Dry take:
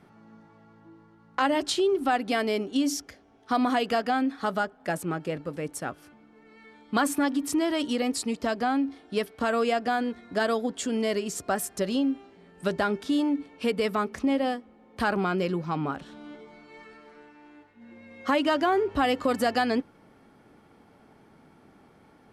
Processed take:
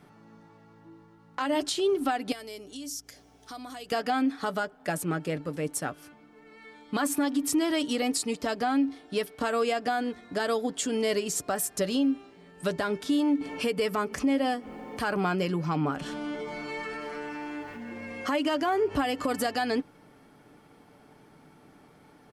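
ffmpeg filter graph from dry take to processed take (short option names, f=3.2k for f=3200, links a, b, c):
-filter_complex "[0:a]asettb=1/sr,asplit=3[a][b][c];[a]atrim=end=2.324[d];[b]atrim=start=2.32:end=3.92,asetpts=PTS-STARTPTS,afade=t=in:d=0.004:c=qsin,afade=t=out:st=1.596:d=0.004:c=qsin,bass=f=250:g=-4,treble=f=4k:g=11,acompressor=threshold=-48dB:ratio=2.5:attack=3.2:release=140:knee=1:detection=peak,aeval=exprs='val(0)+0.000794*(sin(2*PI*60*n/s)+sin(2*PI*2*60*n/s)/2+sin(2*PI*3*60*n/s)/3+sin(2*PI*4*60*n/s)/4+sin(2*PI*5*60*n/s)/5)':c=same[e];[c]atrim=start=3.916[f];[d][e]acrossfade=d=0.004:c1=hsin:c2=qsin[g];[g][f]acrossfade=d=0.004:c1=qsin:c2=hsin,asettb=1/sr,asplit=3[h][i][j];[h]atrim=end=13.414[k];[i]atrim=start=13.41:end=19.4,asetpts=PTS-STARTPTS,afade=t=in:d=0.004:c=qsin,afade=t=out:st=5.986:d=0.004:c=qsin,acompressor=mode=upward:threshold=-26dB:ratio=2.5:attack=3.2:release=140:knee=2.83:detection=peak,bandreject=f=3.8k:w=8.5[l];[j]atrim=start=19.396[m];[k][l]acrossfade=d=0.004:c1=hsin:c2=qsin[n];[n][m]acrossfade=d=0.004:c1=qsin:c2=hsin,highshelf=f=4.7k:g=6,aecho=1:1:6.8:0.32,alimiter=limit=-18dB:level=0:latency=1:release=136"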